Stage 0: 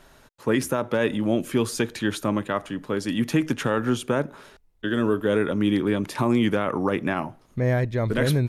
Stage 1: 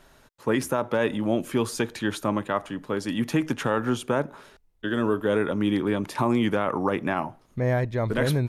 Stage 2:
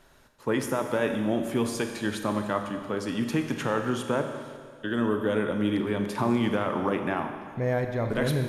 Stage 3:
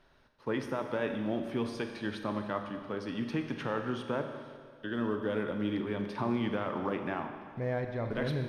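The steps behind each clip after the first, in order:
dynamic EQ 880 Hz, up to +5 dB, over -41 dBFS, Q 1.3; gain -2.5 dB
Schroeder reverb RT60 1.9 s, combs from 30 ms, DRR 5.5 dB; gain -3 dB
block floating point 7-bit; polynomial smoothing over 15 samples; gain -6.5 dB

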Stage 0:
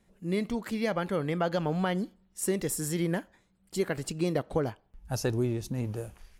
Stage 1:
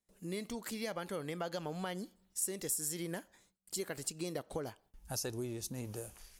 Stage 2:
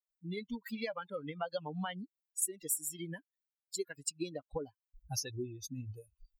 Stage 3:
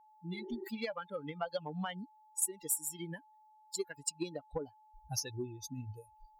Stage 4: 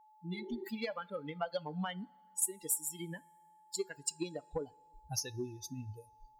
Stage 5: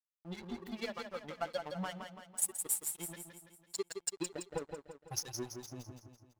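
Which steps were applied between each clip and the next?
gate with hold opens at -56 dBFS; tone controls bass -5 dB, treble +12 dB; compressor 2:1, threshold -40 dBFS, peak gain reduction 12 dB; gain -2 dB
per-bin expansion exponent 3; gain +6.5 dB
whine 860 Hz -60 dBFS; spectral repair 0.36–0.65, 280–1900 Hz before; added harmonics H 7 -32 dB, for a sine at -18.5 dBFS; gain +1 dB
two-slope reverb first 0.22 s, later 1.9 s, from -20 dB, DRR 16.5 dB
crossover distortion -44 dBFS; feedback echo 0.167 s, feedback 49%, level -6.5 dB; gain +1 dB

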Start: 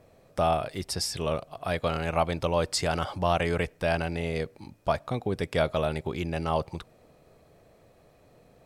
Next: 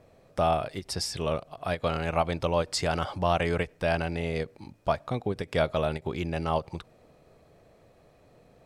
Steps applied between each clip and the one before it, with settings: high shelf 11000 Hz -9 dB; ending taper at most 410 dB/s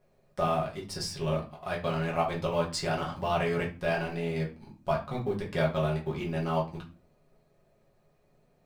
G.711 law mismatch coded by A; reverb RT60 0.35 s, pre-delay 5 ms, DRR -3.5 dB; gain -6.5 dB

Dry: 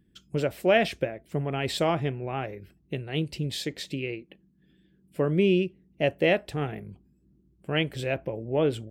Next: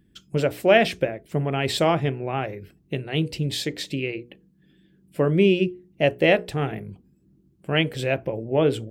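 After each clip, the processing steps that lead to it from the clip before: notches 60/120/180/240/300/360/420/480 Hz; gain +5 dB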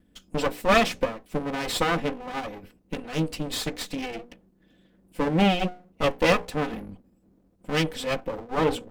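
minimum comb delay 4 ms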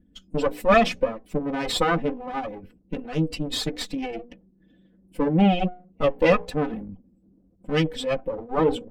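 spectral contrast raised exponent 1.5; gain +2.5 dB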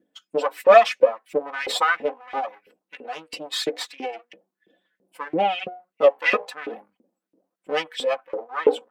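LFO high-pass saw up 3 Hz 390–2400 Hz

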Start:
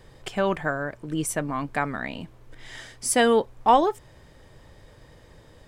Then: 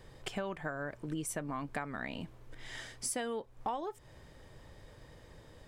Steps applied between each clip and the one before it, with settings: compressor 8:1, threshold -30 dBFS, peak gain reduction 17 dB; gain -4 dB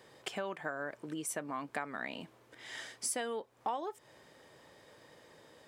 Bessel high-pass 310 Hz, order 2; gain +1 dB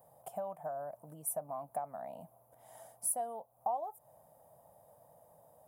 EQ curve 170 Hz 0 dB, 370 Hz -18 dB, 680 Hz +10 dB, 1800 Hz -23 dB, 4300 Hz -23 dB, 7700 Hz -9 dB, 11000 Hz +12 dB; gain -2.5 dB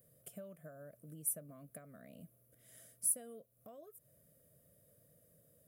Butterworth band-stop 850 Hz, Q 0.68; gain +1 dB

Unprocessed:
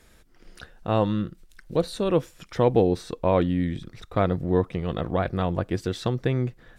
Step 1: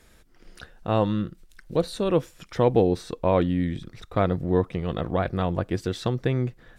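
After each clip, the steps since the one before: nothing audible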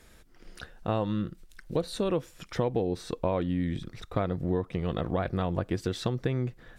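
compressor 6:1, threshold -24 dBFS, peak gain reduction 10 dB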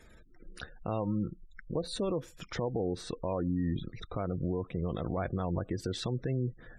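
spectral gate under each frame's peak -25 dB strong; limiter -23 dBFS, peak gain reduction 9.5 dB

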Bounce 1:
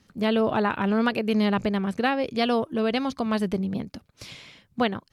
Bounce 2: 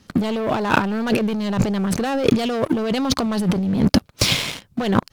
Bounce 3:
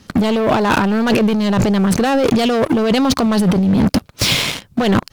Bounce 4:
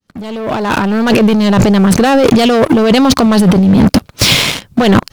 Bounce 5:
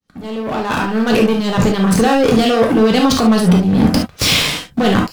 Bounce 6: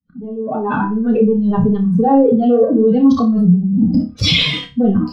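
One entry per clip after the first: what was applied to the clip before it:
bell 2000 Hz -3.5 dB 0.56 oct; sample leveller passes 3; negative-ratio compressor -26 dBFS, ratio -1; gain +6 dB
in parallel at +2 dB: limiter -11.5 dBFS, peak gain reduction 10 dB; on the sum: hard clip -9.5 dBFS, distortion -13 dB
opening faded in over 1.31 s; gain +6 dB
non-linear reverb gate 90 ms flat, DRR 0 dB; gain -6.5 dB
spectral contrast raised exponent 2.6; on a send: flutter echo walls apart 5 m, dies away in 0.27 s

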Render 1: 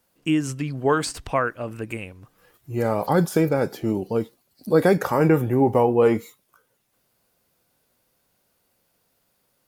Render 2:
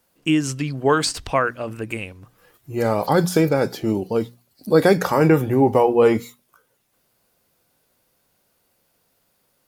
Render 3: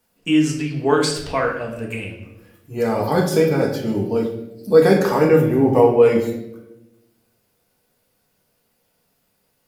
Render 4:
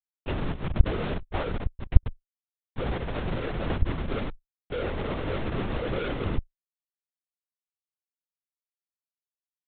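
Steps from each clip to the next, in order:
notches 60/120/180/240 Hz; dynamic EQ 4500 Hz, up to +6 dB, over -47 dBFS, Q 0.94; gain +2.5 dB
reverb RT60 0.95 s, pre-delay 4 ms, DRR -1.5 dB; gain -4 dB
Schmitt trigger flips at -20 dBFS; added harmonics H 4 -8 dB, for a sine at -13.5 dBFS; LPC vocoder at 8 kHz whisper; gain -9.5 dB

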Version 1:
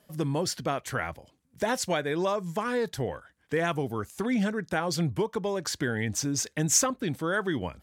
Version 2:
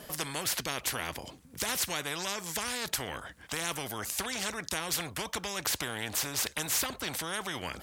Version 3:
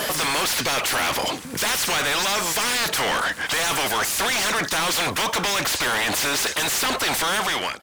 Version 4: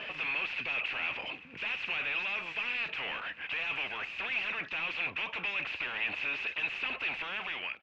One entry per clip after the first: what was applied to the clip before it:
spectral compressor 4:1; gain -4.5 dB
ending faded out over 0.63 s; overdrive pedal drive 37 dB, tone 6100 Hz, clips at -14.5 dBFS
ladder low-pass 2700 Hz, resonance 85%; gain -7 dB

